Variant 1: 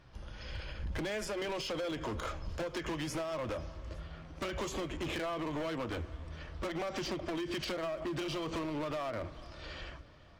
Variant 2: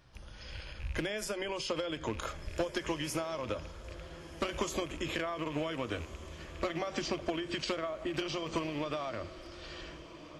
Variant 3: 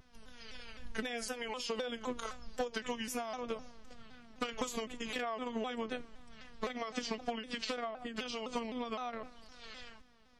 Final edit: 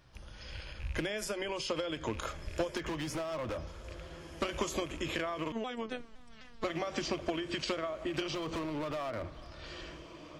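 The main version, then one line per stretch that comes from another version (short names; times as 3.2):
2
2.77–3.67 from 1
5.52–6.64 from 3
8.35–9.66 from 1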